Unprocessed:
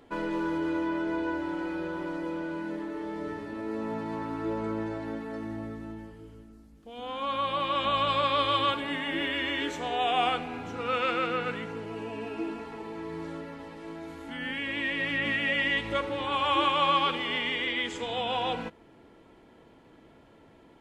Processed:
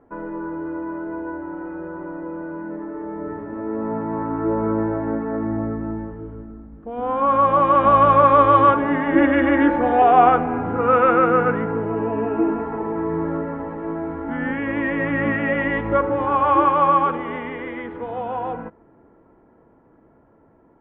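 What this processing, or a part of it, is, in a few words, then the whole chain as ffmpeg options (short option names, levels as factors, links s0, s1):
action camera in a waterproof case: -filter_complex "[0:a]asettb=1/sr,asplit=3[s0][s1][s2];[s0]atrim=end=9.154[s3];[s1]atrim=start=9.15:end=10.02,asetpts=PTS-STARTPTS,afade=t=in:d=0.004:c=qsin,afade=t=out:st=0.866:d=0.004:c=qsin,aecho=1:1:3.6:0.82,atrim=end_sample=38367[s4];[s2]atrim=start=10.016[s5];[s3][s4]acrossfade=d=0.004:c1=hsin:c2=qsin[s6];[s6][s5]acrossfade=d=0.004:c1=qsin:c2=hsin,lowpass=f=1500:w=0.5412,lowpass=f=1500:w=1.3066,dynaudnorm=f=290:g=31:m=5.96,volume=1.12" -ar 48000 -c:a aac -b:a 64k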